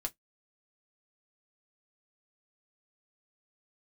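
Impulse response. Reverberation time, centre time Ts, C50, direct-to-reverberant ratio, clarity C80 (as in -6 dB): 0.10 s, 4 ms, 31.0 dB, 3.0 dB, 47.0 dB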